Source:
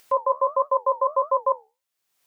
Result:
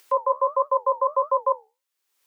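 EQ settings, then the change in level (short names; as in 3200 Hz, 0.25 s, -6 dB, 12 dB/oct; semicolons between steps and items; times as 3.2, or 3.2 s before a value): steep high-pass 270 Hz 48 dB/oct; Butterworth band-stop 680 Hz, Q 4.8; 0.0 dB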